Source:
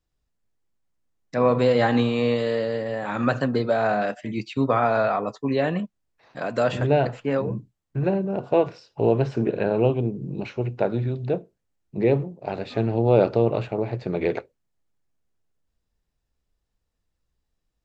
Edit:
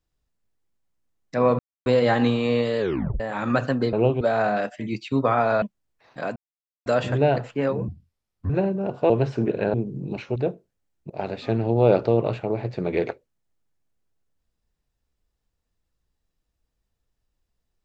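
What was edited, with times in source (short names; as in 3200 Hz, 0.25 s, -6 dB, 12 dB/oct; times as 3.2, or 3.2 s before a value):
1.59 insert silence 0.27 s
2.52 tape stop 0.41 s
5.07–5.81 cut
6.55 insert silence 0.50 s
7.57–7.99 speed 68%
8.59–9.09 cut
9.73–10.01 move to 3.66
10.63–11.23 cut
11.97–12.38 cut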